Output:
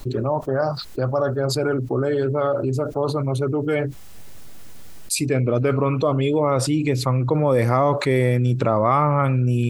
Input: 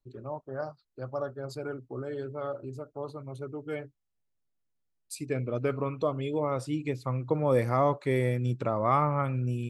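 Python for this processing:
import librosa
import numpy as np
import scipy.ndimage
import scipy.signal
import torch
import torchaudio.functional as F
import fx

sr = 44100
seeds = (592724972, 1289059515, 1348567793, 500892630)

y = fx.env_flatten(x, sr, amount_pct=70)
y = F.gain(torch.from_numpy(y), 5.0).numpy()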